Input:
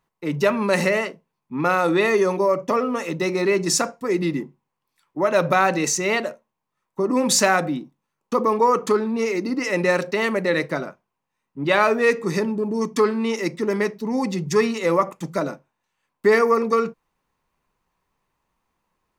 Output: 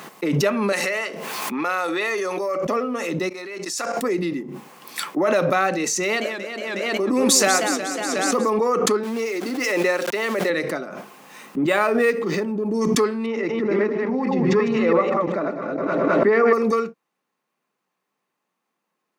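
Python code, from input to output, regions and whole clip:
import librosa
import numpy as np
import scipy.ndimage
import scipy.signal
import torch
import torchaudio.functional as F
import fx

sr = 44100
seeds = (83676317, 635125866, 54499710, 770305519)

y = fx.chain(x, sr, fx.highpass(hz=930.0, slope=6),
    fx.env_flatten(amount_pct=50), at=(0.72, 2.65))
y = fx.chain(y, sr, fx.highpass(hz=910.0, slope=6),
    fx.level_steps(step_db=16), at=(3.29, 3.97))
y = fx.chain(y, sr, fx.brickwall_highpass(low_hz=180.0),
    fx.high_shelf(hz=4300.0, db=5.5),
    fx.echo_warbled(ms=182, feedback_pct=60, rate_hz=2.8, cents=198, wet_db=-7.0), at=(6.03, 8.5))
y = fx.chain(y, sr, fx.highpass(hz=280.0, slope=12),
    fx.sample_gate(floor_db=-34.0), at=(9.03, 10.5))
y = fx.chain(y, sr, fx.transient(attack_db=1, sustain_db=-4),
    fx.resample_linear(factor=4), at=(11.62, 12.66))
y = fx.chain(y, sr, fx.reverse_delay(ms=167, wet_db=-2),
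    fx.lowpass(hz=2200.0, slope=12),
    fx.echo_alternate(ms=105, hz=820.0, feedback_pct=68, wet_db=-13), at=(13.26, 16.53))
y = scipy.signal.sosfilt(scipy.signal.butter(4, 190.0, 'highpass', fs=sr, output='sos'), y)
y = fx.notch(y, sr, hz=960.0, q=8.3)
y = fx.pre_swell(y, sr, db_per_s=21.0)
y = y * 10.0 ** (-2.0 / 20.0)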